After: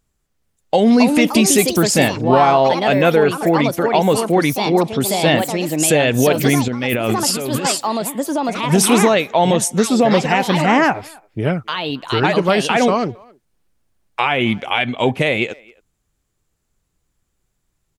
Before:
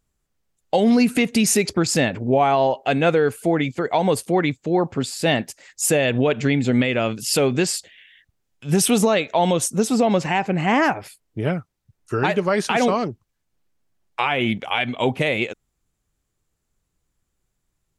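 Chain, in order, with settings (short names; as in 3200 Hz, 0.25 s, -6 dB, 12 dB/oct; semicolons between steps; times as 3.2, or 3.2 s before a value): echoes that change speed 0.421 s, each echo +4 st, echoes 2, each echo -6 dB; speakerphone echo 0.27 s, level -25 dB; 6.68–7.65 negative-ratio compressor -24 dBFS, ratio -1; gain +4 dB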